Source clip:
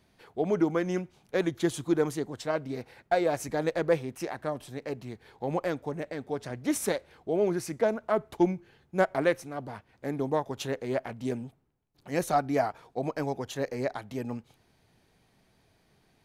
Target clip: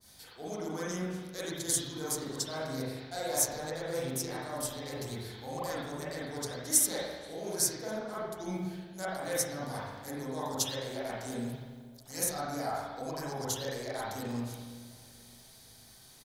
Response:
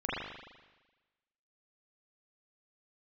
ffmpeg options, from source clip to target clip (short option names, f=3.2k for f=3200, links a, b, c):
-filter_complex "[0:a]areverse,acompressor=threshold=-38dB:ratio=4,areverse[a];[1:a]atrim=start_sample=2205[b];[a][b]afir=irnorm=-1:irlink=0,aexciter=amount=13:drive=3.5:freq=3.9k,equalizer=f=320:t=o:w=2.3:g=-7,asplit=2[c][d];[d]adelay=478,lowpass=f=1.2k:p=1,volume=-20.5dB,asplit=2[e][f];[f]adelay=478,lowpass=f=1.2k:p=1,volume=0.49,asplit=2[g][h];[h]adelay=478,lowpass=f=1.2k:p=1,volume=0.49,asplit=2[i][j];[j]adelay=478,lowpass=f=1.2k:p=1,volume=0.49[k];[c][e][g][i][k]amix=inputs=5:normalize=0,adynamicequalizer=threshold=0.00501:dfrequency=2100:dqfactor=0.7:tfrequency=2100:tqfactor=0.7:attack=5:release=100:ratio=0.375:range=3:mode=cutabove:tftype=highshelf"